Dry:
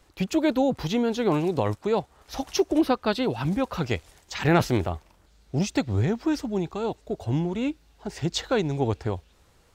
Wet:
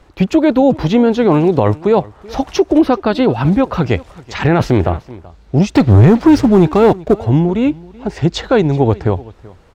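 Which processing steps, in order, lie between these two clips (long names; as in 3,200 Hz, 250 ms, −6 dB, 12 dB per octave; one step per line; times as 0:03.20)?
low-pass filter 1,700 Hz 6 dB per octave
0:05.74–0:07.14: leveller curve on the samples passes 2
single-tap delay 381 ms −22 dB
boost into a limiter +14.5 dB
level −1 dB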